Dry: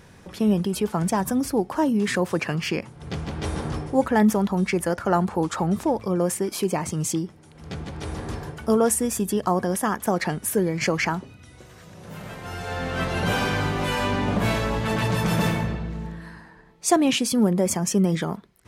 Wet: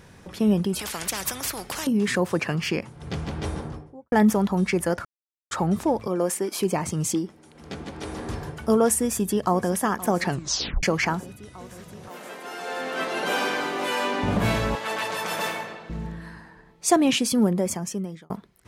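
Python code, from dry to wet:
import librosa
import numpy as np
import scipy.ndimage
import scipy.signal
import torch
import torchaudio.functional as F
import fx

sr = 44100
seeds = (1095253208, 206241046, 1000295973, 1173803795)

y = fx.spectral_comp(x, sr, ratio=4.0, at=(0.79, 1.87))
y = fx.studio_fade_out(y, sr, start_s=3.28, length_s=0.84)
y = fx.highpass(y, sr, hz=250.0, slope=12, at=(6.07, 6.61))
y = fx.low_shelf_res(y, sr, hz=180.0, db=-6.5, q=1.5, at=(7.14, 8.29))
y = fx.echo_throw(y, sr, start_s=8.99, length_s=0.77, ms=520, feedback_pct=85, wet_db=-17.0)
y = fx.highpass(y, sr, hz=270.0, slope=24, at=(12.08, 14.23))
y = fx.highpass(y, sr, hz=540.0, slope=12, at=(14.75, 15.9))
y = fx.edit(y, sr, fx.silence(start_s=5.05, length_s=0.46),
    fx.tape_stop(start_s=10.29, length_s=0.54),
    fx.fade_out_span(start_s=17.36, length_s=0.94), tone=tone)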